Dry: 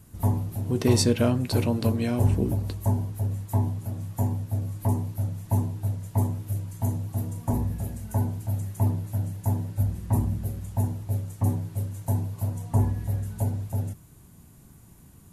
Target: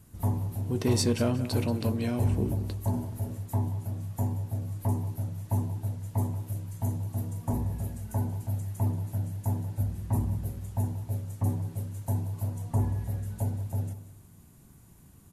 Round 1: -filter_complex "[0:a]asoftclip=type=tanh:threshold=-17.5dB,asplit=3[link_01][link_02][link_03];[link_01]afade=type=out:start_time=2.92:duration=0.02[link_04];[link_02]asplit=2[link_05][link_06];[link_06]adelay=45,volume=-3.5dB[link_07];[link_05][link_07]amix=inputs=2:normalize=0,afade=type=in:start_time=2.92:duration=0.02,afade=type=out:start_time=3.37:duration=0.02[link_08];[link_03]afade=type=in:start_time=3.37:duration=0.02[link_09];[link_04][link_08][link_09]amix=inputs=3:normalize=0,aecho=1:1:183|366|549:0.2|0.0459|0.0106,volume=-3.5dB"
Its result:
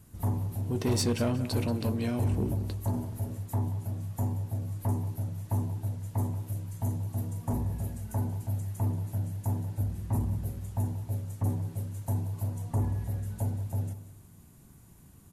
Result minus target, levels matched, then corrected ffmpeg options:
soft clipping: distortion +9 dB
-filter_complex "[0:a]asoftclip=type=tanh:threshold=-11dB,asplit=3[link_01][link_02][link_03];[link_01]afade=type=out:start_time=2.92:duration=0.02[link_04];[link_02]asplit=2[link_05][link_06];[link_06]adelay=45,volume=-3.5dB[link_07];[link_05][link_07]amix=inputs=2:normalize=0,afade=type=in:start_time=2.92:duration=0.02,afade=type=out:start_time=3.37:duration=0.02[link_08];[link_03]afade=type=in:start_time=3.37:duration=0.02[link_09];[link_04][link_08][link_09]amix=inputs=3:normalize=0,aecho=1:1:183|366|549:0.2|0.0459|0.0106,volume=-3.5dB"

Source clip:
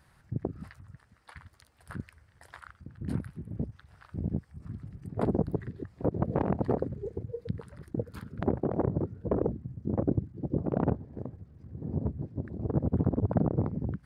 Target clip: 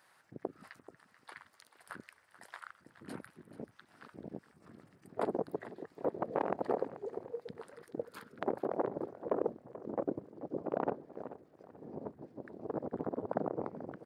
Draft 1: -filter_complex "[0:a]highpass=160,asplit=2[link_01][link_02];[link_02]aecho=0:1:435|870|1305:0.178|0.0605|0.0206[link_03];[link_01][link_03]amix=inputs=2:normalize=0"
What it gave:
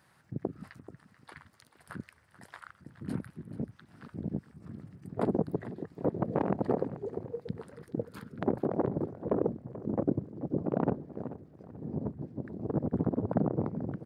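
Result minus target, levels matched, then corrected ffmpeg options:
125 Hz band +10.0 dB
-filter_complex "[0:a]highpass=460,asplit=2[link_01][link_02];[link_02]aecho=0:1:435|870|1305:0.178|0.0605|0.0206[link_03];[link_01][link_03]amix=inputs=2:normalize=0"

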